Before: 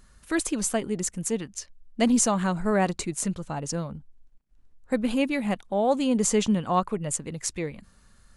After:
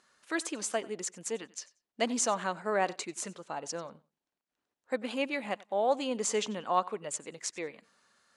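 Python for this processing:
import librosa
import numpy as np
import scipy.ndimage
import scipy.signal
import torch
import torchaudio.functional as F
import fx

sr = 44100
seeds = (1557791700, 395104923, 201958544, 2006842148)

y = fx.bandpass_edges(x, sr, low_hz=430.0, high_hz=6900.0)
y = fx.echo_feedback(y, sr, ms=92, feedback_pct=19, wet_db=-21.5)
y = y * 10.0 ** (-3.0 / 20.0)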